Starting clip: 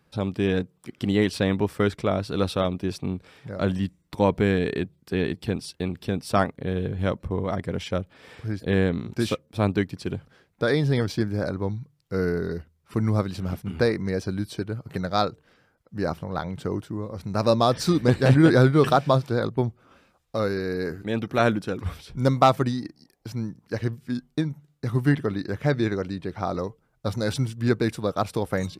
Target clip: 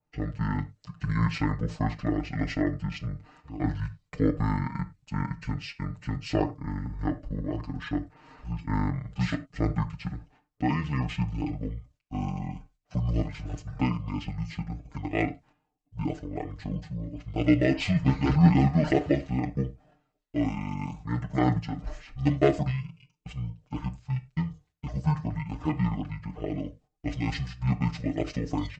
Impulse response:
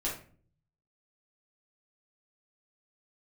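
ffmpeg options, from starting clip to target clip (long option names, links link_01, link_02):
-filter_complex "[0:a]asetrate=23361,aresample=44100,atempo=1.88775,agate=range=-11dB:threshold=-52dB:ratio=16:detection=peak,aecho=1:1:6.6:0.8,asplit=2[link_01][link_02];[1:a]atrim=start_sample=2205,atrim=end_sample=3969,adelay=16[link_03];[link_02][link_03]afir=irnorm=-1:irlink=0,volume=-16.5dB[link_04];[link_01][link_04]amix=inputs=2:normalize=0,adynamicequalizer=threshold=0.0112:dfrequency=1800:dqfactor=0.7:tfrequency=1800:tqfactor=0.7:attack=5:release=100:ratio=0.375:range=2:mode=boostabove:tftype=highshelf,volume=-5.5dB"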